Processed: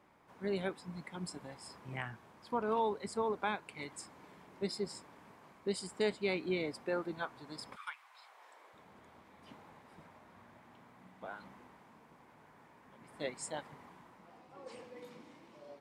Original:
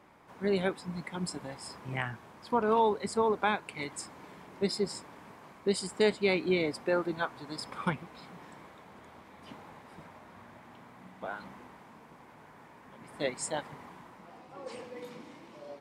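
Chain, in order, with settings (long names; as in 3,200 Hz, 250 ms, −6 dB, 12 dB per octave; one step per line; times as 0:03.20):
0:07.75–0:08.72: high-pass filter 1,400 Hz → 370 Hz 24 dB per octave
level −7 dB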